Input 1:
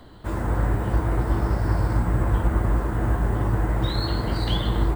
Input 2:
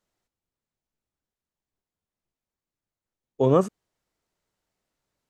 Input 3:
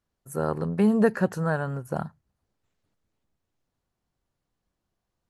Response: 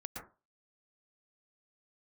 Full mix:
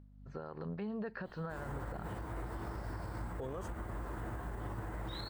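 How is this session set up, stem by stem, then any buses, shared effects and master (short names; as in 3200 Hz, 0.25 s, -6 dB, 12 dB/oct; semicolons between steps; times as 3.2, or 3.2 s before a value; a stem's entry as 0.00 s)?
-9.5 dB, 1.25 s, no bus, no send, compressor, threshold -21 dBFS, peak gain reduction 6.5 dB
+1.0 dB, 0.00 s, bus A, no send, low-pass opened by the level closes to 1000 Hz
-0.5 dB, 0.00 s, bus A, no send, steep low-pass 4700 Hz 48 dB/oct; hum 50 Hz, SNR 16 dB; noise-modulated level, depth 60%
bus A: 0.0 dB, compressor 6:1, threshold -30 dBFS, peak gain reduction 16.5 dB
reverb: off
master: low shelf 400 Hz -6.5 dB; limiter -32.5 dBFS, peak gain reduction 12 dB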